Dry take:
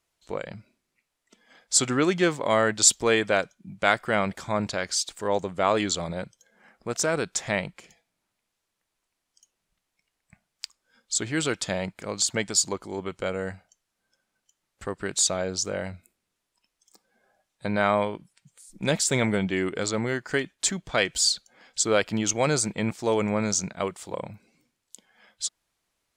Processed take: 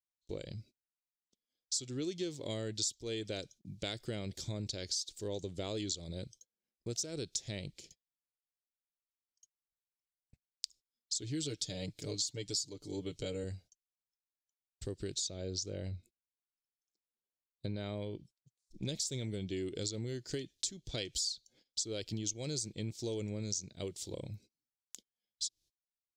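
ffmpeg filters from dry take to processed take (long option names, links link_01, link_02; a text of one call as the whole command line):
ffmpeg -i in.wav -filter_complex "[0:a]asettb=1/sr,asplit=3[link_01][link_02][link_03];[link_01]atrim=end=11.224[link_04];[link_02]atrim=start=11.22:end=13.44,asetpts=PTS-STARTPTS,afade=type=in:duration=0.004:curve=qsin,afade=type=out:start_time=2.216:duration=0.004:curve=qsin,aecho=1:1:6.8:0.76,atrim=end_sample=97902[link_05];[link_03]atrim=start=13.436[link_06];[link_04][link_05]acrossfade=duration=0.004:curve1=hsin:curve2=qsin[link_07];[link_07][link_06]acrossfade=duration=0.004:curve1=qsin:curve2=hsin,asettb=1/sr,asplit=3[link_08][link_09][link_10];[link_08]atrim=end=15.144[link_11];[link_09]atrim=start=15.14:end=18.89,asetpts=PTS-STARTPTS,afade=type=in:duration=0.004:curve=qsin,afade=type=out:start_time=3.746:duration=0.004:curve=qsin,aemphasis=mode=reproduction:type=50fm[link_12];[link_10]atrim=start=18.886[link_13];[link_11][link_12]acrossfade=duration=0.004:curve1=hsin:curve2=qsin[link_14];[link_14][link_13]acrossfade=duration=0.004:curve1=qsin:curve2=hsin,firequalizer=gain_entry='entry(120,0);entry(180,-10);entry(340,-4);entry(730,-20);entry(1100,-27);entry(3700,0);entry(5600,3);entry(8900,-6);entry(14000,-3)':delay=0.05:min_phase=1,agate=range=-28dB:threshold=-56dB:ratio=16:detection=peak,acompressor=threshold=-36dB:ratio=6,volume=1dB" out.wav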